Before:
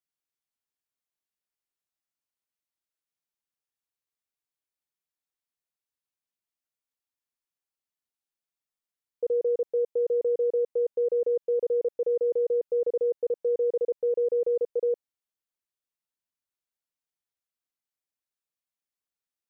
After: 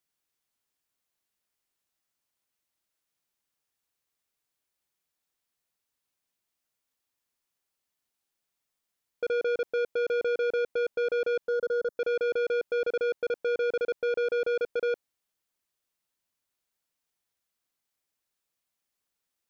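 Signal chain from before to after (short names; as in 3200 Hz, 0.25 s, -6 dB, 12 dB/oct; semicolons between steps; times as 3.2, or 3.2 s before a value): soft clip -33.5 dBFS, distortion -10 dB; 11.48–11.97 fixed phaser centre 500 Hz, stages 8; gain +8 dB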